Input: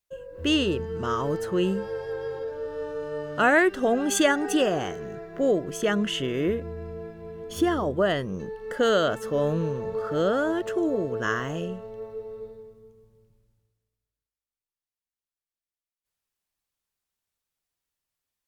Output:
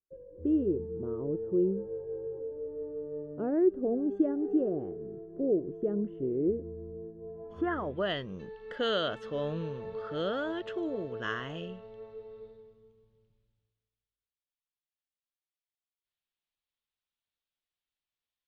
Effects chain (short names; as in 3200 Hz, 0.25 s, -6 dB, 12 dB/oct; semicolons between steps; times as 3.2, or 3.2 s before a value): low-pass sweep 380 Hz -> 3500 Hz, 7.15–8.03; gain -9 dB